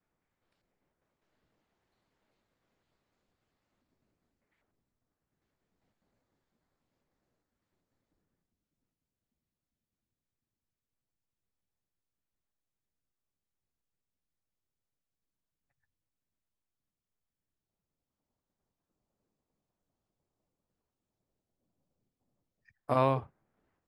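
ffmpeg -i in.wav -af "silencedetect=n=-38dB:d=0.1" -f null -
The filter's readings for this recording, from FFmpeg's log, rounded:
silence_start: 0.00
silence_end: 22.90 | silence_duration: 22.90
silence_start: 23.20
silence_end: 23.87 | silence_duration: 0.67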